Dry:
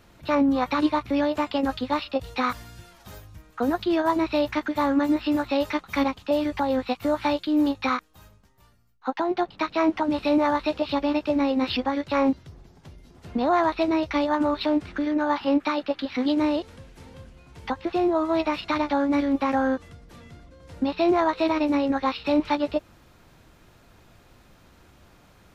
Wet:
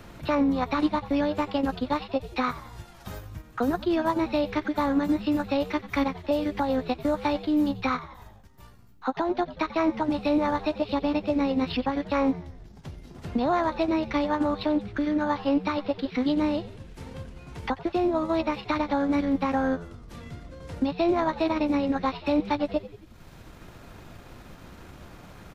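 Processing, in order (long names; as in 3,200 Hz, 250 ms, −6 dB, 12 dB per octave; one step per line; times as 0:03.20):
transient designer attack +1 dB, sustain −6 dB
low-shelf EQ 100 Hz +10 dB
echo with shifted repeats 90 ms, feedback 51%, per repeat −95 Hz, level −16 dB
multiband upward and downward compressor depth 40%
level −3 dB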